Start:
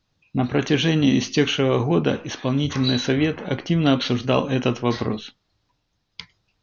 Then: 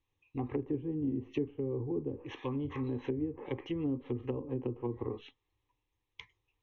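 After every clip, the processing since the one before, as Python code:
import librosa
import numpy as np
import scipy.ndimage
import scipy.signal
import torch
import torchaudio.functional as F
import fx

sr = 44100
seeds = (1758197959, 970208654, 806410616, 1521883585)

y = fx.fixed_phaser(x, sr, hz=970.0, stages=8)
y = fx.env_lowpass_down(y, sr, base_hz=320.0, full_db=-20.0)
y = y * 10.0 ** (-8.5 / 20.0)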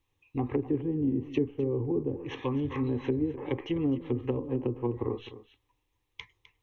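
y = x + 10.0 ** (-15.0 / 20.0) * np.pad(x, (int(256 * sr / 1000.0), 0))[:len(x)]
y = y * 10.0 ** (5.5 / 20.0)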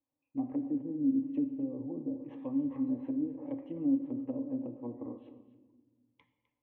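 y = fx.double_bandpass(x, sr, hz=400.0, octaves=1.1)
y = fx.room_shoebox(y, sr, seeds[0], volume_m3=1200.0, walls='mixed', distance_m=0.6)
y = y * 10.0 ** (1.5 / 20.0)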